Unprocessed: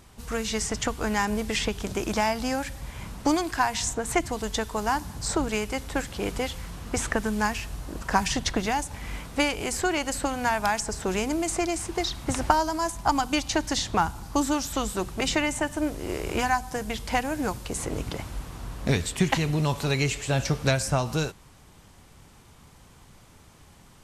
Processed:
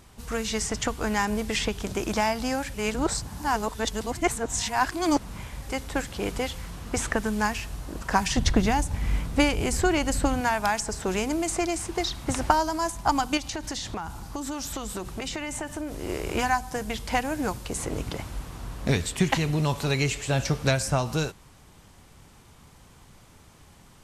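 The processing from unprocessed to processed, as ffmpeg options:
-filter_complex "[0:a]asettb=1/sr,asplit=3[s0][s1][s2];[s0]atrim=end=8.374[s3];[s1]atrim=start=8.37:end=10.41,asetpts=PTS-STARTPTS,afade=t=in:d=0.004:c=qsin,afade=t=out:st=2.036:d=0.004:c=qsin,lowshelf=f=240:g=11.5[s4];[s2]atrim=start=10.406[s5];[s3][s4]acrossfade=d=0.004:c1=hsin:c2=qsin[s6];[s6][s5]acrossfade=d=0.004:c1=qsin:c2=hsin,asettb=1/sr,asplit=3[s7][s8][s9];[s7]atrim=end=13.374[s10];[s8]atrim=start=13.37:end=16.02,asetpts=PTS-STARTPTS,afade=t=in:d=0.004:c=qsin,afade=t=out:st=2.646:d=0.004:c=qsin,acompressor=threshold=0.0398:ratio=12:attack=3.2:release=140:knee=1:detection=peak[s11];[s9]atrim=start=16.016[s12];[s10][s11]acrossfade=d=0.004:c1=hsin:c2=qsin[s13];[s13][s12]acrossfade=d=0.004:c1=qsin:c2=hsin,asplit=3[s14][s15][s16];[s14]atrim=end=2.742[s17];[s15]atrim=start=2.738:end=5.692,asetpts=PTS-STARTPTS,areverse[s18];[s16]atrim=start=5.688[s19];[s17][s18]acrossfade=d=0.004:c1=hsin:c2=hsin[s20];[s20][s19]acrossfade=d=0.004:c1=hsin:c2=hsin"

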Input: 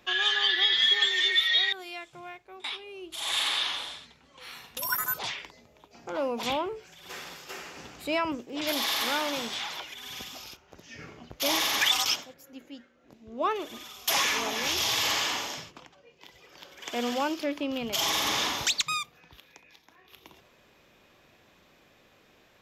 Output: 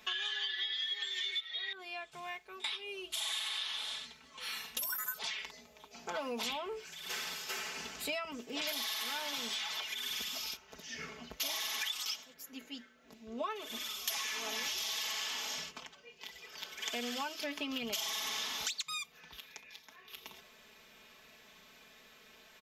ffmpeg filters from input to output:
-filter_complex "[0:a]asettb=1/sr,asplit=3[s0][s1][s2];[s0]atrim=end=1.404[s3];[s1]atrim=start=1.4:end=2.12,asetpts=PTS-STARTPTS,afade=t=in:d=0.004:c=qsin,afade=t=out:st=0.716:d=0.004:c=qsin,lowpass=f=1300:p=1[s4];[s2]atrim=start=2.116[s5];[s3][s4]acrossfade=d=0.004:c1=hsin:c2=qsin[s6];[s6][s5]acrossfade=d=0.004:c1=qsin:c2=hsin,tiltshelf=f=1200:g=-5,aecho=1:1:4.6:0.84,acompressor=threshold=0.0224:ratio=12,volume=0.841"

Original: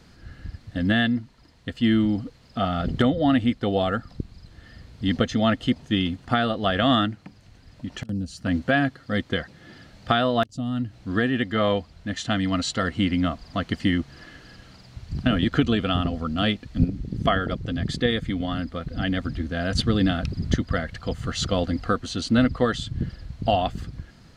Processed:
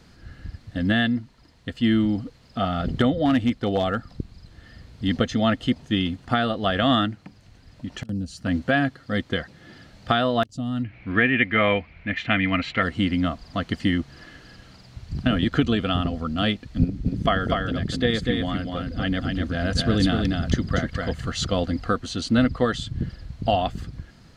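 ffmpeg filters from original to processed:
-filter_complex "[0:a]asettb=1/sr,asplit=3[s0][s1][s2];[s0]atrim=end=3.254[s3];[s1]atrim=start=3.25:end=5.08,asetpts=PTS-STARTPTS,afade=t=in:d=0.004:c=qsin,afade=t=out:st=1.826:d=0.004:c=qsin,volume=4.73,asoftclip=hard,volume=0.211[s4];[s2]atrim=start=5.076[s5];[s3][s4]acrossfade=d=0.004:c1=hsin:c2=qsin[s6];[s6][s5]acrossfade=d=0.004:c1=qsin:c2=hsin,asettb=1/sr,asplit=3[s7][s8][s9];[s7]atrim=end=10.834[s10];[s8]atrim=start=10.83:end=12.83,asetpts=PTS-STARTPTS,afade=t=in:d=0.004:c=qsin,afade=t=out:st=1.996:d=0.004:c=qsin,lowpass=f=2300:t=q:w=9[s11];[s9]atrim=start=12.826[s12];[s10][s11]acrossfade=d=0.004:c1=hsin:c2=qsin[s13];[s13][s12]acrossfade=d=0.004:c1=qsin:c2=hsin,asettb=1/sr,asplit=3[s14][s15][s16];[s14]atrim=end=16.814[s17];[s15]atrim=start=16.81:end=21.29,asetpts=PTS-STARTPTS,afade=t=in:d=0.004:c=qsin,afade=t=out:st=4.476:d=0.004:c=qsin,aecho=1:1:245:0.631,atrim=end_sample=197568[s18];[s16]atrim=start=21.286[s19];[s17][s18]acrossfade=d=0.004:c1=hsin:c2=qsin[s20];[s20][s19]acrossfade=d=0.004:c1=qsin:c2=hsin"

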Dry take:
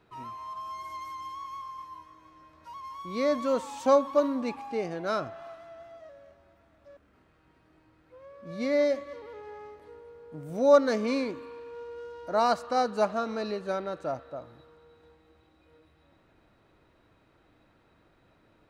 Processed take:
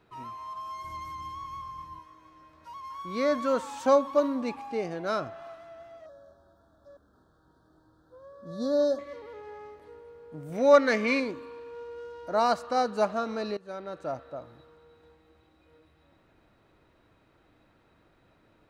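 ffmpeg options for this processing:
-filter_complex "[0:a]asettb=1/sr,asplit=3[s0][s1][s2];[s0]atrim=end=0.844[s3];[s1]atrim=start=0.84:end=1.99,asetpts=PTS-STARTPTS,afade=t=in:d=0.004:c=qsin,afade=t=out:st=1.146:d=0.004:c=qsin,bass=f=250:g=14,treble=f=4000:g=-1[s4];[s2]atrim=start=1.986[s5];[s3][s4]acrossfade=d=0.004:c1=hsin:c2=qsin[s6];[s6][s5]acrossfade=d=0.004:c1=qsin:c2=hsin,asettb=1/sr,asplit=3[s7][s8][s9];[s7]atrim=end=2.904[s10];[s8]atrim=start=2.9:end=3.89,asetpts=PTS-STARTPTS,afade=t=in:d=0.004:c=qsin,afade=t=out:st=0.986:d=0.004:c=qsin,equalizer=f=1500:t=o:w=0.43:g=8[s11];[s9]atrim=start=3.886[s12];[s10][s11]acrossfade=d=0.004:c1=hsin:c2=qsin[s13];[s13][s12]acrossfade=d=0.004:c1=qsin:c2=hsin,asettb=1/sr,asplit=3[s14][s15][s16];[s14]atrim=end=6.064[s17];[s15]atrim=start=6.06:end=8.99,asetpts=PTS-STARTPTS,afade=t=in:d=0.004:c=qsin,afade=t=out:st=2.926:d=0.004:c=qsin,asuperstop=centerf=2400:order=12:qfactor=1.4[s18];[s16]atrim=start=8.986[s19];[s17][s18]acrossfade=d=0.004:c1=hsin:c2=qsin[s20];[s20][s19]acrossfade=d=0.004:c1=qsin:c2=hsin,asettb=1/sr,asplit=3[s21][s22][s23];[s21]atrim=end=10.524[s24];[s22]atrim=start=10.52:end=11.2,asetpts=PTS-STARTPTS,afade=t=in:d=0.004:c=qsin,afade=t=out:st=0.676:d=0.004:c=qsin,equalizer=f=2100:t=o:w=0.9:g=13[s25];[s23]atrim=start=11.196[s26];[s24][s25]acrossfade=d=0.004:c1=hsin:c2=qsin[s27];[s27][s26]acrossfade=d=0.004:c1=qsin:c2=hsin,asplit=2[s28][s29];[s28]atrim=end=13.57,asetpts=PTS-STARTPTS,afade=t=out:st=13.566:d=0.004:c=hsin:silence=0.133352[s30];[s29]atrim=start=13.57,asetpts=PTS-STARTPTS,afade=t=in:d=0.82:c=qsin:silence=0.133352[s31];[s30][s31]concat=n=2:v=0:a=1"

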